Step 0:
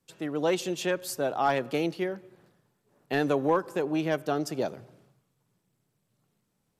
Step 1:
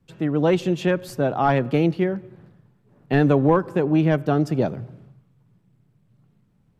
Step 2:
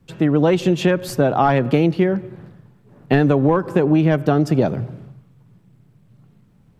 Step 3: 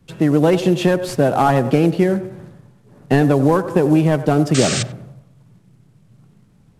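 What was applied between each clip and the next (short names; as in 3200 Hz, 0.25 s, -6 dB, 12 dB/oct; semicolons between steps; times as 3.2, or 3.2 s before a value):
tone controls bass +13 dB, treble -12 dB; gain +5 dB
compressor 6:1, threshold -20 dBFS, peak gain reduction 8.5 dB; gain +8.5 dB
CVSD 64 kbps; painted sound noise, 4.54–4.83, 1100–8800 Hz -24 dBFS; narrowing echo 94 ms, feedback 48%, band-pass 630 Hz, level -11.5 dB; gain +1.5 dB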